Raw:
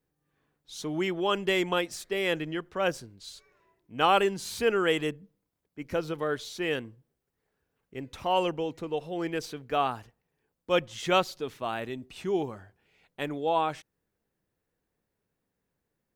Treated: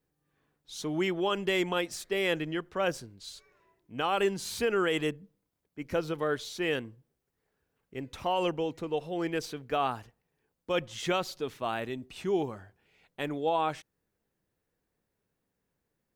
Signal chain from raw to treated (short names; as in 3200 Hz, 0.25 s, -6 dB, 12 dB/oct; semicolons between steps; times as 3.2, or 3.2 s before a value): limiter -18.5 dBFS, peak gain reduction 8 dB